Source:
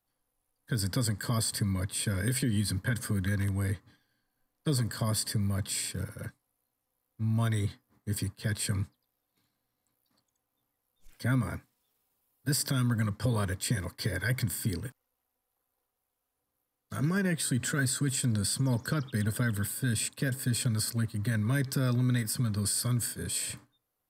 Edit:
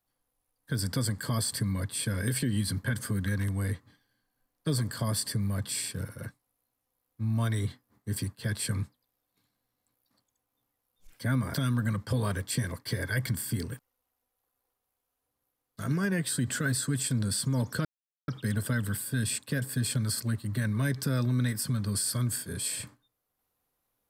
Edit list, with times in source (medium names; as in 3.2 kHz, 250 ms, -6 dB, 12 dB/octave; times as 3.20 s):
11.54–12.67 s: delete
18.98 s: insert silence 0.43 s